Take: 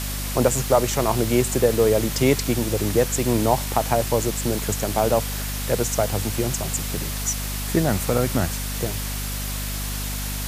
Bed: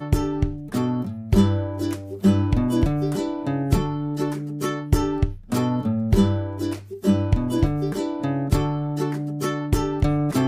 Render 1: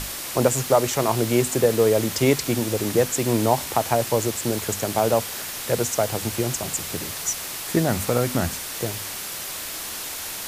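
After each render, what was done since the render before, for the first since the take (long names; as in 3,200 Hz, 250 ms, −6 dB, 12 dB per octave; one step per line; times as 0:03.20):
mains-hum notches 50/100/150/200/250 Hz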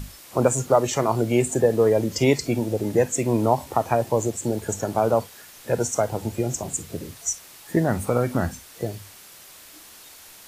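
noise reduction from a noise print 14 dB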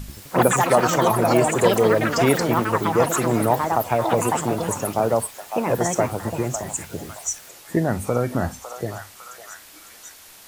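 echo through a band-pass that steps 554 ms, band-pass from 940 Hz, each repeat 0.7 octaves, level −5.5 dB
delay with pitch and tempo change per echo 85 ms, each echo +6 semitones, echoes 3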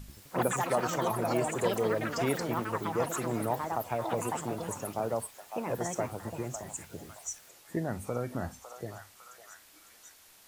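level −12 dB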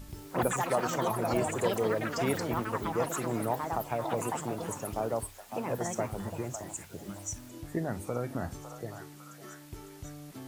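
mix in bed −24.5 dB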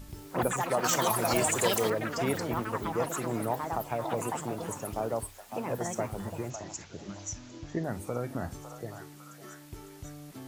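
0:00.84–0:01.90: drawn EQ curve 420 Hz 0 dB, 1,400 Hz +5 dB, 5,700 Hz +12 dB
0:06.50–0:07.84: bad sample-rate conversion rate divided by 3×, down none, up filtered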